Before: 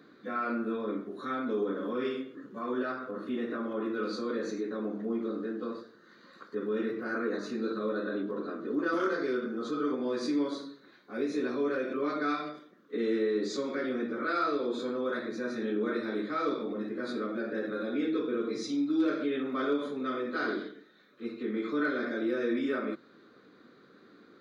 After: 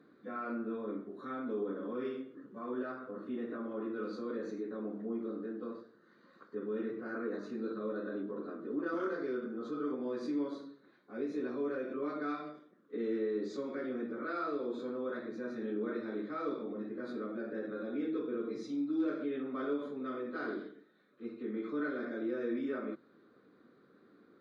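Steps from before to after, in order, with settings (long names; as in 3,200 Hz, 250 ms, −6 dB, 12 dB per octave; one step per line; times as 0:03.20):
high-shelf EQ 2,200 Hz −11.5 dB
level −5 dB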